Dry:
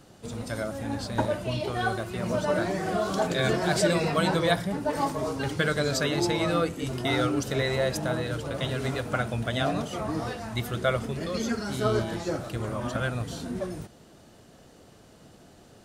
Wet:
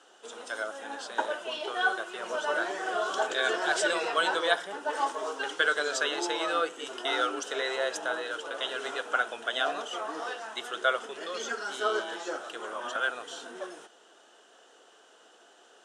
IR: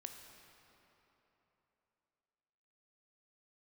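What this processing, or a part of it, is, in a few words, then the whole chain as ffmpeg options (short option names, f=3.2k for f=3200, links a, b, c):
phone speaker on a table: -af "highpass=f=430:w=0.5412,highpass=f=430:w=1.3066,equalizer=f=580:t=q:w=4:g=-6,equalizer=f=1.5k:t=q:w=4:g=6,equalizer=f=2.2k:t=q:w=4:g=-7,equalizer=f=3.1k:t=q:w=4:g=7,equalizer=f=4.5k:t=q:w=4:g=-8,lowpass=f=8.6k:w=0.5412,lowpass=f=8.6k:w=1.3066"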